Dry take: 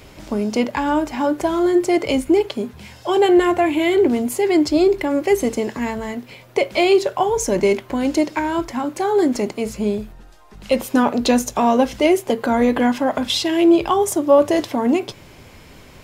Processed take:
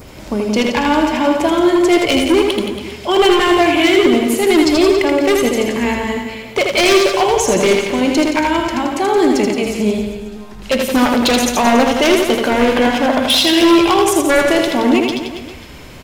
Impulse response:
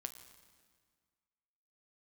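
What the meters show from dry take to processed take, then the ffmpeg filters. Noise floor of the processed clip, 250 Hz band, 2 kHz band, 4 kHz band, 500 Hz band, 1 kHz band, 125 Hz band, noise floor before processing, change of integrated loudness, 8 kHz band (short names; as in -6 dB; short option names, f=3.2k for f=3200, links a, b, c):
-33 dBFS, +4.0 dB, +9.5 dB, +10.5 dB, +3.5 dB, +5.0 dB, +5.0 dB, -44 dBFS, +5.0 dB, +7.5 dB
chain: -filter_complex "[0:a]adynamicequalizer=threshold=0.00891:dfrequency=2900:dqfactor=1.2:tfrequency=2900:tqfactor=1.2:attack=5:release=100:ratio=0.375:range=4:mode=boostabove:tftype=bell,acompressor=mode=upward:threshold=-36dB:ratio=2.5,aeval=exprs='0.299*(abs(mod(val(0)/0.299+3,4)-2)-1)':c=same,aecho=1:1:80|172|277.8|399.5|539.4:0.631|0.398|0.251|0.158|0.1,asplit=2[a][b];[1:a]atrim=start_sample=2205[c];[b][c]afir=irnorm=-1:irlink=0,volume=4.5dB[d];[a][d]amix=inputs=2:normalize=0,volume=-3.5dB"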